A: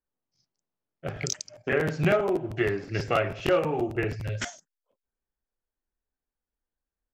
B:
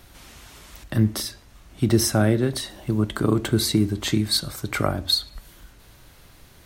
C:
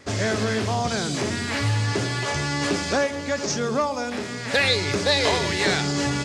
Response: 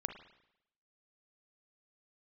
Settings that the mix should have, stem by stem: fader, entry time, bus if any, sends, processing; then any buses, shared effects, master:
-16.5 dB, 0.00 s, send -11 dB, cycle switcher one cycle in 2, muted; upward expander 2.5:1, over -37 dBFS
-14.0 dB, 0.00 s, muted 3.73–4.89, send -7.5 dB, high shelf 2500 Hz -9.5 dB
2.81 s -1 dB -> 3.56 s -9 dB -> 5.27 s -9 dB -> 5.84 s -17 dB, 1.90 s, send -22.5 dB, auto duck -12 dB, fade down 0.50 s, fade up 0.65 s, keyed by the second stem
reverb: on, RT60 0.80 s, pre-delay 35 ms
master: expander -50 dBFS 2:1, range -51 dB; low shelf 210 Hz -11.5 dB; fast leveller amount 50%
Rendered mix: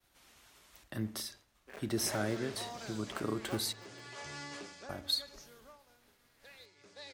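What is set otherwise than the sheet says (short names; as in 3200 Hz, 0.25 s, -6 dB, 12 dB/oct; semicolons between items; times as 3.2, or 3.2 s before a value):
stem B: missing high shelf 2500 Hz -9.5 dB; stem C -1.0 dB -> -8.5 dB; master: missing fast leveller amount 50%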